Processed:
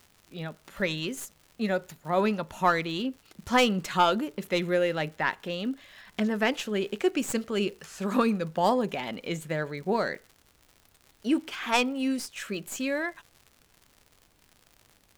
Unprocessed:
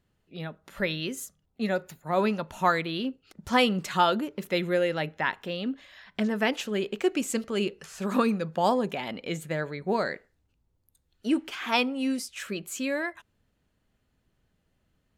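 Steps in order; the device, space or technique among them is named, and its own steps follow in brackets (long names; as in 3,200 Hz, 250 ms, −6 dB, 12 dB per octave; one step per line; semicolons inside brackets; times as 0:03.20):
record under a worn stylus (stylus tracing distortion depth 0.041 ms; surface crackle 110 per second −41 dBFS; pink noise bed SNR 37 dB)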